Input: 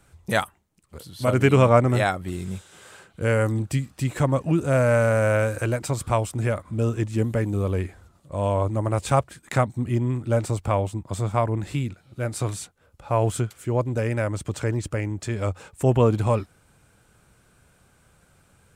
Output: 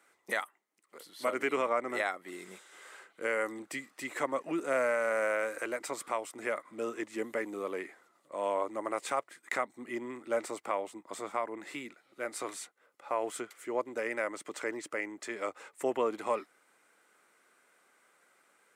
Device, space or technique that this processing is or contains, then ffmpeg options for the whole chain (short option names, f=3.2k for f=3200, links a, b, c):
laptop speaker: -af "highpass=f=300:w=0.5412,highpass=f=300:w=1.3066,equalizer=f=1.2k:t=o:w=0.56:g=5,equalizer=f=2k:t=o:w=0.28:g=11,alimiter=limit=-11.5dB:level=0:latency=1:release=335,volume=-7.5dB"